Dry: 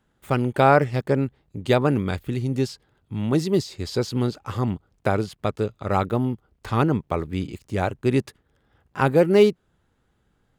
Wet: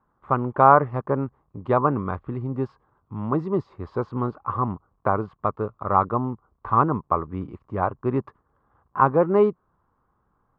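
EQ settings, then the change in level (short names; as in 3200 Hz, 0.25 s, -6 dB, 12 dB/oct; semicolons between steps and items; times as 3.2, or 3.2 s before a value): synth low-pass 1100 Hz, resonance Q 6.8; -4.0 dB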